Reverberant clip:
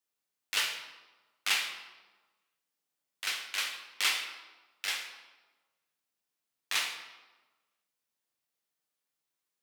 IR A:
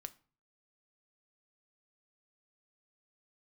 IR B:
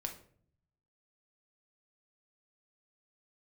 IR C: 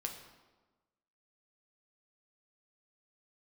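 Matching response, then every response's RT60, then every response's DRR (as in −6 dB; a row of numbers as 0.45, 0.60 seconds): C; 0.40, 0.55, 1.3 seconds; 10.5, 3.5, 2.5 decibels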